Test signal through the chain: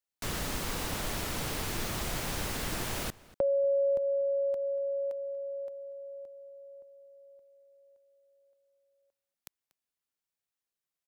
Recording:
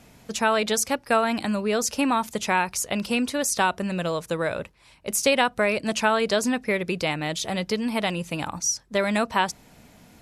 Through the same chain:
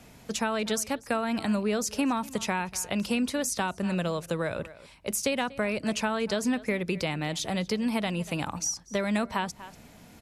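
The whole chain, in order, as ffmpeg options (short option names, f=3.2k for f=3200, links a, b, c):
-filter_complex "[0:a]asplit=2[a][b];[b]adelay=239.1,volume=-21dB,highshelf=f=4k:g=-5.38[c];[a][c]amix=inputs=2:normalize=0,acrossover=split=250[d][e];[e]acompressor=threshold=-30dB:ratio=2.5[f];[d][f]amix=inputs=2:normalize=0"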